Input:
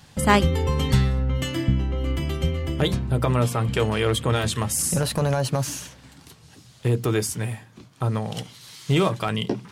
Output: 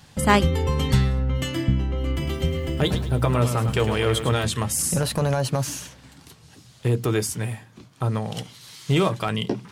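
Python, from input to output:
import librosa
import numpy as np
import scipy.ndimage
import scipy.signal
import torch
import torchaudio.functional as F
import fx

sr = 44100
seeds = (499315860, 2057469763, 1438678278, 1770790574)

y = fx.echo_crushed(x, sr, ms=105, feedback_pct=35, bits=8, wet_db=-9.0, at=(2.11, 4.34))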